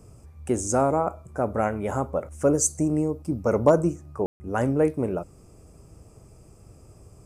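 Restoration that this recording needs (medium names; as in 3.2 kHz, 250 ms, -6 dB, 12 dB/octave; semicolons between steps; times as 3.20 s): room tone fill 4.26–4.40 s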